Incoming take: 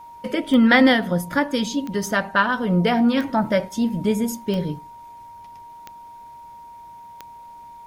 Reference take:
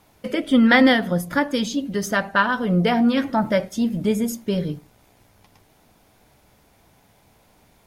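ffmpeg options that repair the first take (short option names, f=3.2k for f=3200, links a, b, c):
-af "adeclick=t=4,bandreject=f=940:w=30"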